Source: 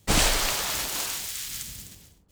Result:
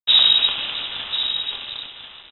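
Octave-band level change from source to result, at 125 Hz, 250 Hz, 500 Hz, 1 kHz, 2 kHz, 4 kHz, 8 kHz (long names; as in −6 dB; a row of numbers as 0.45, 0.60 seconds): below −10 dB, −13.0 dB, −9.0 dB, −4.0 dB, 0.0 dB, +14.0 dB, below −40 dB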